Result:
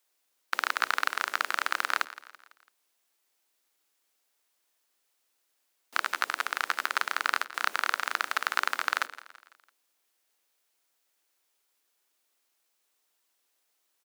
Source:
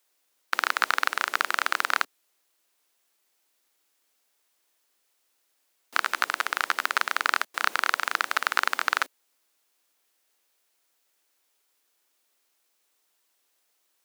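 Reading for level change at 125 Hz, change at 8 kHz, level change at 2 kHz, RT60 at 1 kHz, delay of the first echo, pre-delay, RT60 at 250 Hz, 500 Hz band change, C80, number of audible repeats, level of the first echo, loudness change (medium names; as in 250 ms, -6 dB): no reading, -3.5 dB, -3.5 dB, no reverb, 167 ms, no reverb, no reverb, -4.0 dB, no reverb, 3, -17.0 dB, -3.5 dB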